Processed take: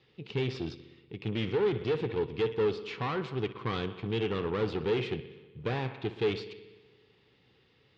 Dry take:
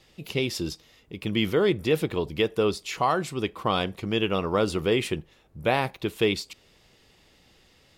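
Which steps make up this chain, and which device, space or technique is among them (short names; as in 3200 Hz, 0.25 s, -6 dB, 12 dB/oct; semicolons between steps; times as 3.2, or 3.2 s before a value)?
analogue delay pedal into a guitar amplifier (analogue delay 61 ms, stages 2048, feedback 72%, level -16 dB; tube stage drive 27 dB, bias 0.8; speaker cabinet 85–4100 Hz, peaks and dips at 120 Hz +9 dB, 430 Hz +8 dB, 630 Hz -9 dB); gain -1.5 dB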